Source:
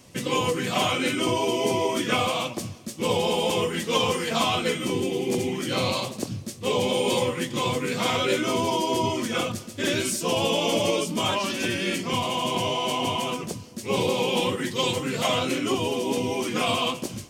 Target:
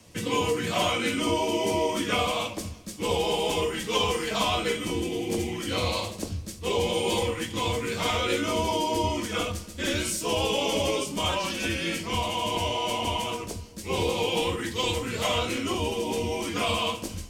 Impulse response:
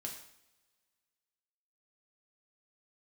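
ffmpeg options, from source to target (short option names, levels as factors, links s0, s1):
-filter_complex "[0:a]asubboost=boost=10.5:cutoff=51,afreqshift=-22,asplit=2[s0][s1];[1:a]atrim=start_sample=2205,atrim=end_sample=3969[s2];[s1][s2]afir=irnorm=-1:irlink=0,volume=1.41[s3];[s0][s3]amix=inputs=2:normalize=0,volume=0.422"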